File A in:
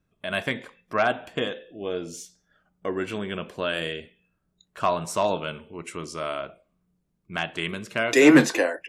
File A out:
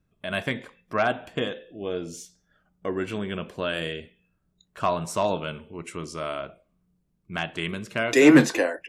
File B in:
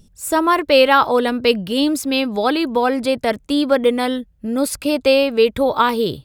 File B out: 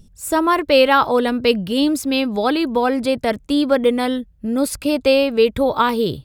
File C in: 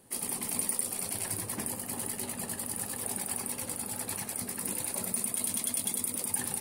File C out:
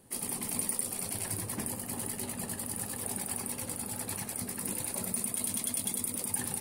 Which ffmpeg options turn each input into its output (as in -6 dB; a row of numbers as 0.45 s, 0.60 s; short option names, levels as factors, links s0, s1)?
-af "lowshelf=f=220:g=5.5,volume=0.841"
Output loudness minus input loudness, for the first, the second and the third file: -0.5 LU, -0.5 LU, -1.5 LU